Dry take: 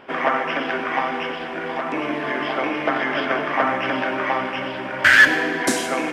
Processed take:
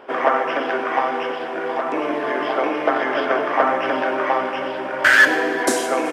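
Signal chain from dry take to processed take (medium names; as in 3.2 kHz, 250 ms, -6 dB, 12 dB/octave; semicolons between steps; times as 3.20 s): FFT filter 170 Hz 0 dB, 430 Hz +13 dB, 1.4 kHz +9 dB, 2.2 kHz +4 dB, 8.7 kHz +9 dB; on a send: delay 382 ms -23.5 dB; on the sum: trim -7.5 dB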